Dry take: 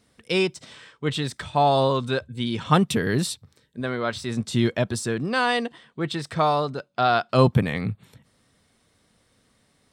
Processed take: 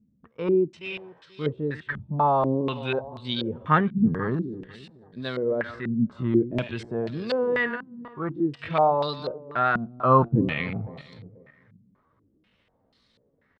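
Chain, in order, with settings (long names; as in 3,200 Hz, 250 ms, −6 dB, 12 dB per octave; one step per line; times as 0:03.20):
feedback delay that plays each chunk backwards 179 ms, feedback 44%, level −13 dB
notch filter 730 Hz, Q 13
tempo change 0.73×
tape wow and flutter 22 cents
low-pass on a step sequencer 4.1 Hz 210–4,200 Hz
level −5 dB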